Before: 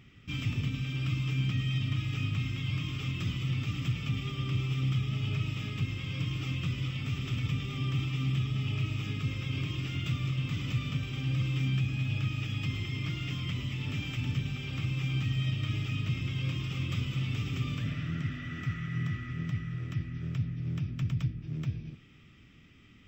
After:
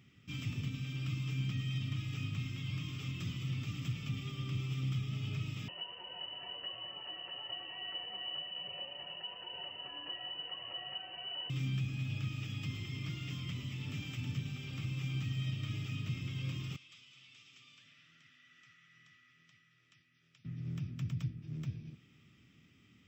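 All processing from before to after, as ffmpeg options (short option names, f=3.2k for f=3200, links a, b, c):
-filter_complex "[0:a]asettb=1/sr,asplit=3[a][b][c];[a]atrim=end=5.684[d];[b]atrim=start=5.68:end=11.5,asetpts=PTS-STARTPTS,afade=t=in:d=0.004:c=qsin,afade=t=out:st=5.816:d=0.004:c=qsin,lowshelf=f=140:g=-10,aecho=1:1:5.1:0.65,atrim=end_sample=256662,lowpass=f=2.6k:t=q:w=0.5098,lowpass=f=2.6k:t=q:w=0.6013,lowpass=f=2.6k:t=q:w=0.9,lowpass=f=2.6k:t=q:w=2.563,afreqshift=-3100[e];[c]atrim=start=11.496[f];[d][e]acrossfade=d=0.004:c1=hsin:c2=qsin[g];[g][f]acrossfade=d=0.004:c1=qsin:c2=hsin,asettb=1/sr,asplit=3[h][i][j];[h]atrim=end=16.764[k];[i]atrim=start=16.76:end=20.45,asetpts=PTS-STARTPTS,afade=t=in:d=0.004:c=qsin,afade=t=out:st=3.686:d=0.004:c=qsin,lowpass=4.2k,aderivative[l];[j]atrim=start=20.446[m];[k][l]acrossfade=d=0.004:c1=hsin:c2=qsin[n];[n][m]acrossfade=d=0.004:c1=qsin:c2=hsin,highpass=110,bass=f=250:g=4,treble=f=4k:g=6,volume=-8dB"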